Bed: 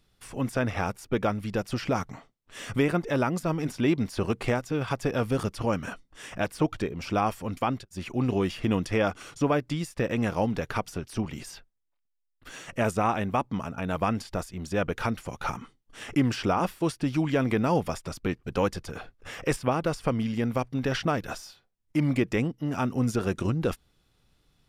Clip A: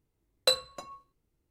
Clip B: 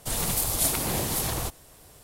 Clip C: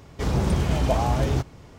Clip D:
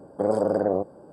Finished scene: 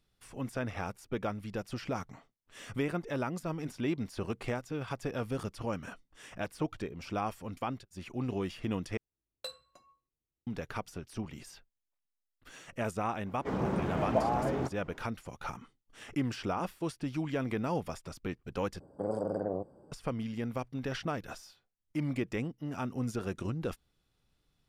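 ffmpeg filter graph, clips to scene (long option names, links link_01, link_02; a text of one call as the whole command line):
ffmpeg -i bed.wav -i cue0.wav -i cue1.wav -i cue2.wav -i cue3.wav -filter_complex "[0:a]volume=-8.5dB[link_01];[3:a]acrossover=split=160 2100:gain=0.1 1 0.141[link_02][link_03][link_04];[link_02][link_03][link_04]amix=inputs=3:normalize=0[link_05];[4:a]lowshelf=frequency=130:gain=11.5[link_06];[link_01]asplit=3[link_07][link_08][link_09];[link_07]atrim=end=8.974[link_10];[1:a]atrim=end=1.5,asetpts=PTS-STARTPTS,volume=-17.5dB[link_11];[link_08]atrim=start=10.466:end=18.804[link_12];[link_06]atrim=end=1.12,asetpts=PTS-STARTPTS,volume=-12dB[link_13];[link_09]atrim=start=19.916[link_14];[link_05]atrim=end=1.78,asetpts=PTS-STARTPTS,volume=-4dB,afade=type=in:duration=0.004:curve=hsin,afade=type=out:start_time=1.776:duration=0.004:curve=hsin,adelay=13260[link_15];[link_10][link_11]acrossfade=duration=0.004:curve1=hsin:curve2=hsin[link_16];[link_16][link_12]acrossfade=duration=0.004:curve1=hsin:curve2=hsin[link_17];[link_17][link_13]acrossfade=duration=0.004:curve1=hsin:curve2=hsin[link_18];[link_18][link_14]acrossfade=duration=0.004:curve1=hsin:curve2=hsin[link_19];[link_19][link_15]amix=inputs=2:normalize=0" out.wav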